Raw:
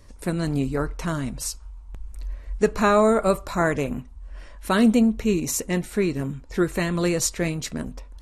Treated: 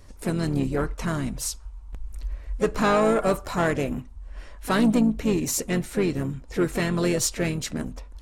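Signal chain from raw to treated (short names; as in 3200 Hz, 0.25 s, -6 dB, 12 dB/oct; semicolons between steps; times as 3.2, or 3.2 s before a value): soft clip -15 dBFS, distortion -15 dB; harmoniser -5 st -12 dB, +4 st -12 dB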